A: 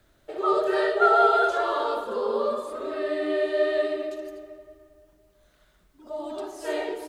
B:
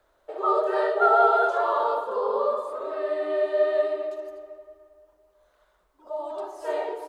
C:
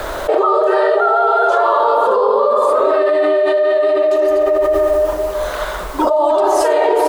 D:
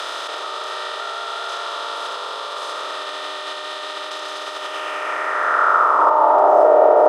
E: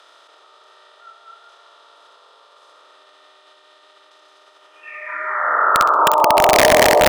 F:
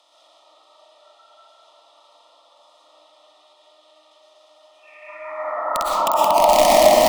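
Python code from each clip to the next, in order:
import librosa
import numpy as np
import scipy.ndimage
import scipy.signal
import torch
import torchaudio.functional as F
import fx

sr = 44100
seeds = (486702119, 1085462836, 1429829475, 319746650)

y1 = fx.graphic_eq(x, sr, hz=(125, 250, 500, 1000), db=(-10, -6, 9, 12))
y1 = y1 * 10.0 ** (-8.0 / 20.0)
y2 = fx.env_flatten(y1, sr, amount_pct=100)
y2 = y2 * 10.0 ** (3.0 / 20.0)
y3 = fx.bin_compress(y2, sr, power=0.2)
y3 = fx.filter_sweep_bandpass(y3, sr, from_hz=3600.0, to_hz=650.0, start_s=4.54, end_s=6.65, q=3.1)
y3 = y3 * 10.0 ** (-1.5 / 20.0)
y4 = fx.noise_reduce_blind(y3, sr, reduce_db=22)
y4 = (np.mod(10.0 ** (4.5 / 20.0) * y4 + 1.0, 2.0) - 1.0) / 10.0 ** (4.5 / 20.0)
y4 = fx.room_flutter(y4, sr, wall_m=11.0, rt60_s=0.3)
y5 = fx.fixed_phaser(y4, sr, hz=420.0, stages=6)
y5 = fx.rev_freeverb(y5, sr, rt60_s=1.4, hf_ratio=0.5, predelay_ms=80, drr_db=-4.5)
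y5 = y5 * 10.0 ** (-5.5 / 20.0)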